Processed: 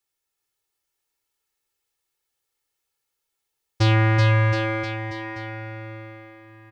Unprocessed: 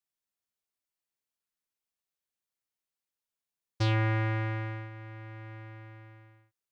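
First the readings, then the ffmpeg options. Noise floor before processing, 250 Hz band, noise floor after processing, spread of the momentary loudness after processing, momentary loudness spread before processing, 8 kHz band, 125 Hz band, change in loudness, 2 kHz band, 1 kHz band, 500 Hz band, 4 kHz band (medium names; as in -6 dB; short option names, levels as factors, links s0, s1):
under -85 dBFS, +9.5 dB, -82 dBFS, 18 LU, 19 LU, no reading, +10.5 dB, +9.0 dB, +11.0 dB, +10.5 dB, +12.0 dB, +11.0 dB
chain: -af "aecho=1:1:2.3:0.65,aecho=1:1:380|722|1030|1307|1556:0.631|0.398|0.251|0.158|0.1,volume=2.37"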